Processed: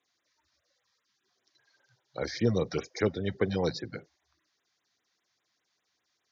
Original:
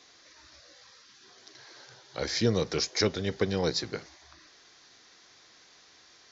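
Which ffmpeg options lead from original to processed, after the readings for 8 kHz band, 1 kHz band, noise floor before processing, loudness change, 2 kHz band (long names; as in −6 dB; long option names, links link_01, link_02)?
can't be measured, −1.5 dB, −58 dBFS, −1.5 dB, −3.0 dB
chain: -filter_complex "[0:a]afftdn=noise_reduction=20:noise_floor=-40,highpass=frequency=70:width=0.5412,highpass=frequency=70:width=1.3066,acrossover=split=2900[link_01][link_02];[link_02]acompressor=threshold=-41dB:ratio=16[link_03];[link_01][link_03]amix=inputs=2:normalize=0,afftfilt=real='re*(1-between(b*sr/1024,340*pow(5700/340,0.5+0.5*sin(2*PI*5*pts/sr))/1.41,340*pow(5700/340,0.5+0.5*sin(2*PI*5*pts/sr))*1.41))':imag='im*(1-between(b*sr/1024,340*pow(5700/340,0.5+0.5*sin(2*PI*5*pts/sr))/1.41,340*pow(5700/340,0.5+0.5*sin(2*PI*5*pts/sr))*1.41))':win_size=1024:overlap=0.75"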